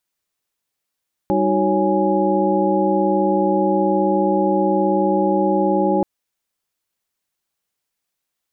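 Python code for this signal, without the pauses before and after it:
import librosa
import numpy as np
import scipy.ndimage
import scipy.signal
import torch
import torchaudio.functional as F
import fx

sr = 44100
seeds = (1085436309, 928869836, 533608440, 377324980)

y = fx.chord(sr, length_s=4.73, notes=(55, 63, 66, 73, 80), wave='sine', level_db=-21.0)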